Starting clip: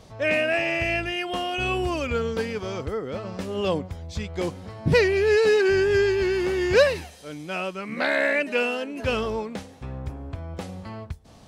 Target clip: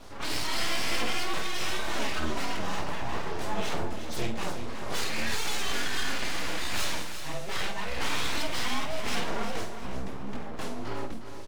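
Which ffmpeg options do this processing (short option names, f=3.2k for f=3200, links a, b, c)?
-filter_complex "[0:a]afftfilt=real='re*lt(hypot(re,im),0.447)':imag='im*lt(hypot(re,im),0.447)':win_size=1024:overlap=0.75,adynamicequalizer=threshold=0.00355:dfrequency=6800:dqfactor=1.8:tfrequency=6800:tqfactor=1.8:attack=5:release=100:ratio=0.375:range=1.5:mode=boostabove:tftype=bell,acontrast=23,asoftclip=type=tanh:threshold=-24.5dB,flanger=delay=17:depth=7:speed=2,afreqshift=30,flanger=delay=6.9:depth=3.2:regen=-26:speed=0.18:shape=triangular,aeval=exprs='abs(val(0))':c=same,asplit=2[a][b];[b]adelay=49,volume=-8dB[c];[a][c]amix=inputs=2:normalize=0,aecho=1:1:358|716|1074|1432:0.316|0.104|0.0344|0.0114,volume=5.5dB"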